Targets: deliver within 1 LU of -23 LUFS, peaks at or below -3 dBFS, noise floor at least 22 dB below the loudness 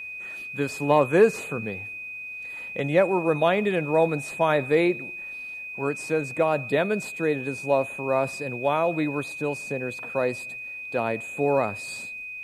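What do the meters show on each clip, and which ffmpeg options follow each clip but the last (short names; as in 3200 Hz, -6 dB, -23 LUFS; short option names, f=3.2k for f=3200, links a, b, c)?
steady tone 2500 Hz; tone level -34 dBFS; loudness -25.5 LUFS; peak -7.0 dBFS; loudness target -23.0 LUFS
-> -af "bandreject=f=2.5k:w=30"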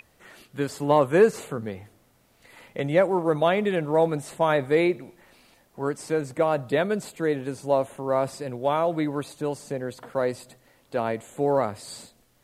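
steady tone none; loudness -25.0 LUFS; peak -7.0 dBFS; loudness target -23.0 LUFS
-> -af "volume=2dB"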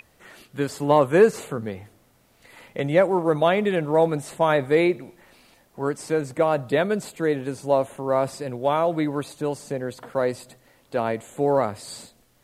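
loudness -23.0 LUFS; peak -5.0 dBFS; noise floor -60 dBFS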